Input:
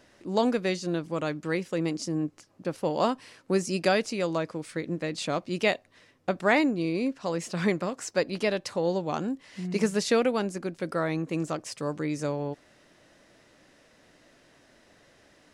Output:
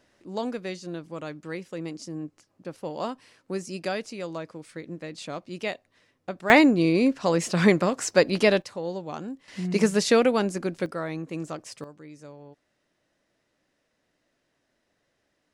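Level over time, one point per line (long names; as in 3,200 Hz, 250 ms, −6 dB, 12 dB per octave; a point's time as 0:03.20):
−6 dB
from 0:06.50 +7 dB
from 0:08.62 −5 dB
from 0:09.48 +4 dB
from 0:10.86 −3.5 dB
from 0:11.84 −15 dB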